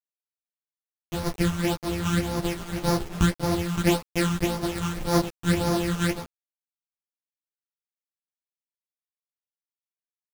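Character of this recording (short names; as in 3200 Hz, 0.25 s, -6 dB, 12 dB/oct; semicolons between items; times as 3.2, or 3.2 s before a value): a buzz of ramps at a fixed pitch in blocks of 256 samples; phasing stages 8, 1.8 Hz, lowest notch 590–2800 Hz; a quantiser's noise floor 6-bit, dither none; a shimmering, thickened sound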